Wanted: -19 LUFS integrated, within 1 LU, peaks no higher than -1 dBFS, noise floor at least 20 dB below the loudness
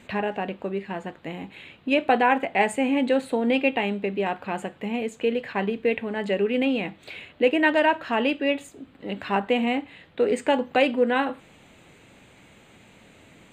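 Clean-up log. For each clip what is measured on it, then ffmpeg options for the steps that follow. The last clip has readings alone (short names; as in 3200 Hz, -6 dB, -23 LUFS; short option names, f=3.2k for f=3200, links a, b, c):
loudness -24.5 LUFS; peak -7.0 dBFS; loudness target -19.0 LUFS
-> -af "volume=5.5dB"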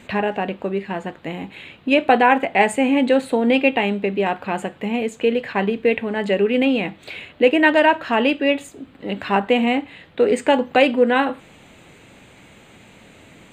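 loudness -19.0 LUFS; peak -1.5 dBFS; noise floor -48 dBFS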